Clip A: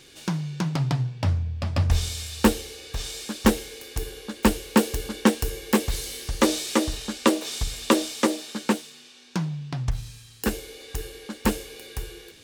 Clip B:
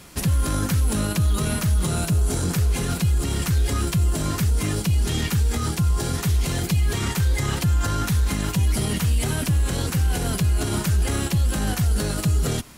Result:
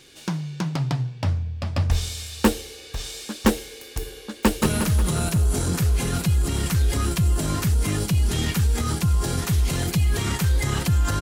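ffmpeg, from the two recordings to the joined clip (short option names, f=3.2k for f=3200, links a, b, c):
-filter_complex "[0:a]apad=whole_dur=11.21,atrim=end=11.21,atrim=end=4.622[a];[1:a]atrim=start=1.378:end=7.97[b];[a][b]acrossfade=d=0.004:c1=hsin:c2=hsin,asplit=2[c][d];[d]afade=t=in:st=4.33:d=0.01,afade=t=out:st=4.62:d=0.01,aecho=0:1:180|360|540|720|900|1080|1260|1440:0.668344|0.367589|0.202174|0.111196|0.0611576|0.0336367|0.0185002|0.0101751[e];[c][e]amix=inputs=2:normalize=0"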